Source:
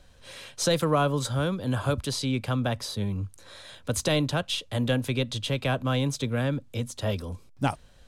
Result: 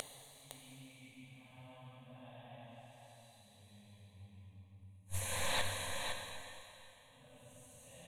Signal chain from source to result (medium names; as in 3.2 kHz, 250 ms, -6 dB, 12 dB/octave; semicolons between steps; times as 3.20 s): upward compressor, threshold -33 dBFS; Paulstretch 4.1×, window 0.25 s, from 2.09 s; bass shelf 230 Hz -6.5 dB; static phaser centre 1.4 kHz, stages 6; inverted gate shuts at -39 dBFS, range -41 dB; on a send: delay 510 ms -6 dB; on the sum: plate-style reverb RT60 2.8 s, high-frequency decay 0.95×, DRR 2 dB; loudspeaker Doppler distortion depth 0.5 ms; trim +16 dB